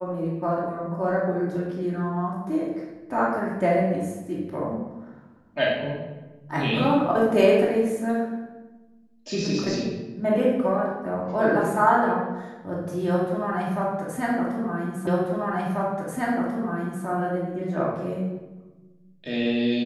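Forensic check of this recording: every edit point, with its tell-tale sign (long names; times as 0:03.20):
0:15.07: the same again, the last 1.99 s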